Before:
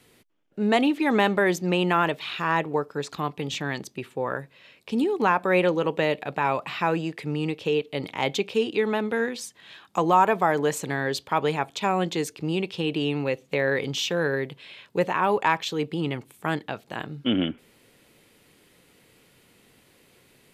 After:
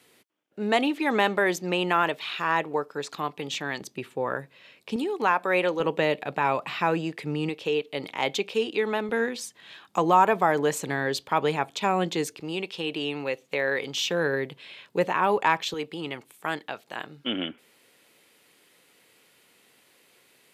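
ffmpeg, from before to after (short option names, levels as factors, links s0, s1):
-af "asetnsamples=n=441:p=0,asendcmd='3.81 highpass f 130;4.96 highpass f 510;5.8 highpass f 120;7.49 highpass f 330;9.09 highpass f 120;12.4 highpass f 510;14.05 highpass f 160;15.74 highpass f 600',highpass=f=360:p=1"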